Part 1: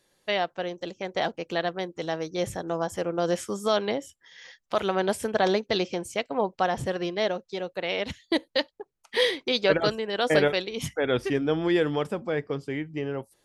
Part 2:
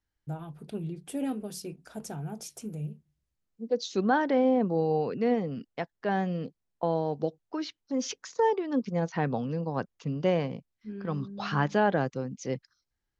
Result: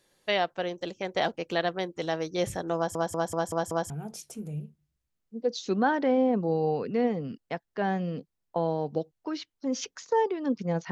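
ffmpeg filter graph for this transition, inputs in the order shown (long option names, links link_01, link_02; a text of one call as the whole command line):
ffmpeg -i cue0.wav -i cue1.wav -filter_complex "[0:a]apad=whole_dur=10.91,atrim=end=10.91,asplit=6[link_01][link_02][link_03][link_04][link_05][link_06];[link_01]atrim=end=2.952[link_07];[link_02]atrim=start=2.758:end=2.952[link_08];[link_03]atrim=start=2.758:end=2.952[link_09];[link_04]atrim=start=2.758:end=2.952[link_10];[link_05]atrim=start=2.758:end=2.952[link_11];[link_06]atrim=start=2.758:end=2.952[link_12];[1:a]atrim=start=2.168:end=9.18[link_13];[link_07][link_08]acrossfade=duration=0.004:curve1=hsin:curve2=hsin[link_14];[link_14][link_09]acrossfade=duration=0.004:curve1=hsin:curve2=hsin[link_15];[link_15][link_10]acrossfade=duration=0.004:curve1=hsin:curve2=hsin[link_16];[link_16][link_11]acrossfade=duration=0.004:curve1=hsin:curve2=hsin[link_17];[link_17][link_12]acrossfade=duration=0.004:curve1=hsin:curve2=hsin[link_18];[link_18][link_13]acrossfade=duration=0.004:curve1=hsin:curve2=hsin" out.wav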